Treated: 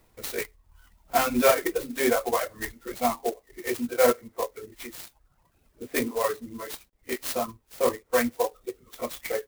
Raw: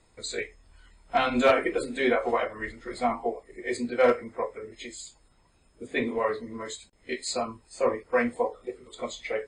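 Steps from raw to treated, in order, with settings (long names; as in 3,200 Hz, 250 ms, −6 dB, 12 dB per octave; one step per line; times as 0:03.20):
reverb reduction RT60 0.99 s
converter with an unsteady clock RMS 0.058 ms
level +1.5 dB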